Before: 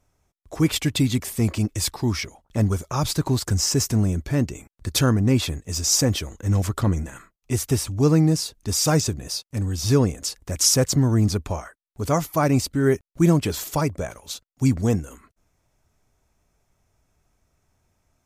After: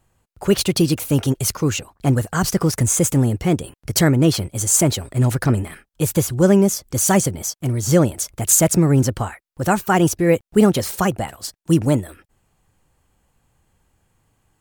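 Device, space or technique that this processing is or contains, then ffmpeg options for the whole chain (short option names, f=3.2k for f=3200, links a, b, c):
nightcore: -af "asetrate=55125,aresample=44100,volume=4dB"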